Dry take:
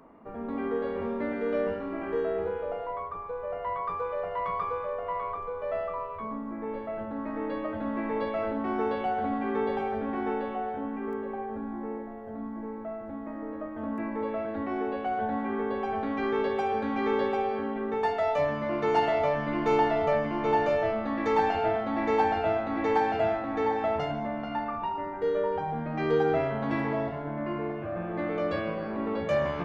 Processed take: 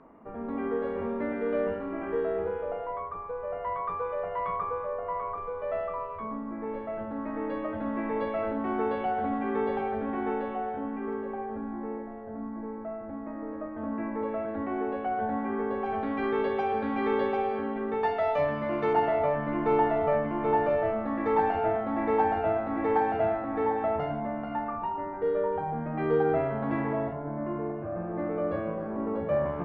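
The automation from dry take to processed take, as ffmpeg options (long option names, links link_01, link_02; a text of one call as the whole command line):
ffmpeg -i in.wav -af "asetnsamples=nb_out_samples=441:pad=0,asendcmd='4.56 lowpass f 1800;5.38 lowpass f 3000;12.24 lowpass f 2200;15.86 lowpass f 3400;18.93 lowpass f 1800;27.13 lowpass f 1200',lowpass=2600" out.wav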